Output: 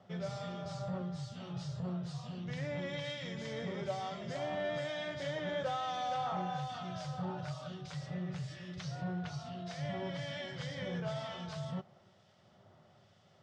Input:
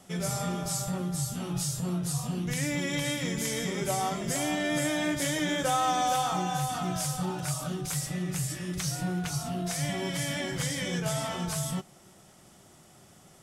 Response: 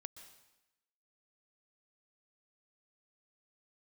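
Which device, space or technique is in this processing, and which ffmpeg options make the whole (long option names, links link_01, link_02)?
guitar amplifier with harmonic tremolo: -filter_complex "[0:a]acrossover=split=1900[link_01][link_02];[link_01]aeval=exprs='val(0)*(1-0.5/2+0.5/2*cos(2*PI*1.1*n/s))':channel_layout=same[link_03];[link_02]aeval=exprs='val(0)*(1-0.5/2-0.5/2*cos(2*PI*1.1*n/s))':channel_layout=same[link_04];[link_03][link_04]amix=inputs=2:normalize=0,asoftclip=type=tanh:threshold=-24.5dB,highpass=93,equalizer=frequency=100:width_type=q:width=4:gain=10,equalizer=frequency=300:width_type=q:width=4:gain=-10,equalizer=frequency=590:width_type=q:width=4:gain=6,equalizer=frequency=2400:width_type=q:width=4:gain=-4,lowpass=frequency=4500:width=0.5412,lowpass=frequency=4500:width=1.3066,volume=-5dB"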